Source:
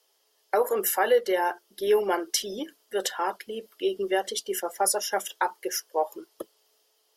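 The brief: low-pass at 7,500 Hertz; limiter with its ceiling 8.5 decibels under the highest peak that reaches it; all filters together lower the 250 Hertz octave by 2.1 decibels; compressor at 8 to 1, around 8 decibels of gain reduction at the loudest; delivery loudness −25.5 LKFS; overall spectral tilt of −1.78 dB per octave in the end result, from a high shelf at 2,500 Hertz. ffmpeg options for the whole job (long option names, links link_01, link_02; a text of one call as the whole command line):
ffmpeg -i in.wav -af "lowpass=7500,equalizer=frequency=250:width_type=o:gain=-4,highshelf=frequency=2500:gain=-5,acompressor=threshold=-26dB:ratio=8,volume=9.5dB,alimiter=limit=-13.5dB:level=0:latency=1" out.wav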